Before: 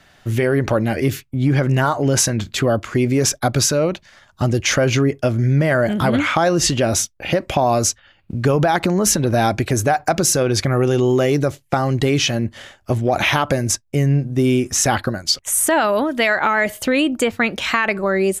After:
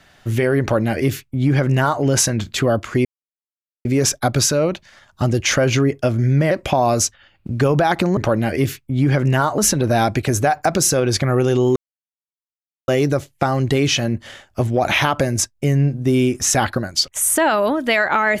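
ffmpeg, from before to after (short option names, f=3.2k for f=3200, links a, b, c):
-filter_complex "[0:a]asplit=6[a][b][c][d][e][f];[a]atrim=end=3.05,asetpts=PTS-STARTPTS,afade=t=out:st=3.046:d=0.004:c=hsin,apad=pad_dur=0.8[g];[b]atrim=start=3.05:end=5.712,asetpts=PTS-STARTPTS,afade=t=in:d=0.004:c=hsin[h];[c]atrim=start=7.348:end=9.012[i];[d]atrim=start=0.608:end=2.022[j];[e]atrim=start=9.008:end=11.19,asetpts=PTS-STARTPTS,afade=t=out:st=2.178:d=0.004:c=hsin,apad=pad_dur=1.12[k];[f]atrim=start=11.19,asetpts=PTS-STARTPTS,afade=t=in:d=0.004:c=hsin[l];[g][h]concat=n=2:v=0:a=1[m];[m][i]acrossfade=d=0.004:c1=hsin:c2=hsin[n];[n][j]acrossfade=d=0.004:c1=hsin:c2=hsin[o];[k][l]concat=n=2:v=0:a=1[p];[o][p]acrossfade=d=0.004:c1=hsin:c2=hsin"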